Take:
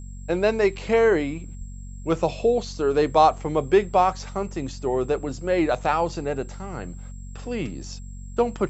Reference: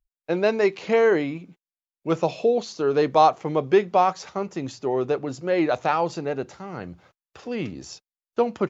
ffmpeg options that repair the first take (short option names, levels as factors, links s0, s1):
-filter_complex "[0:a]bandreject=f=46.5:t=h:w=4,bandreject=f=93:t=h:w=4,bandreject=f=139.5:t=h:w=4,bandreject=f=186:t=h:w=4,bandreject=f=232.5:t=h:w=4,bandreject=f=7600:w=30,asplit=3[s0][s1][s2];[s0]afade=t=out:st=1.58:d=0.02[s3];[s1]highpass=f=140:w=0.5412,highpass=f=140:w=1.3066,afade=t=in:st=1.58:d=0.02,afade=t=out:st=1.7:d=0.02[s4];[s2]afade=t=in:st=1.7:d=0.02[s5];[s3][s4][s5]amix=inputs=3:normalize=0"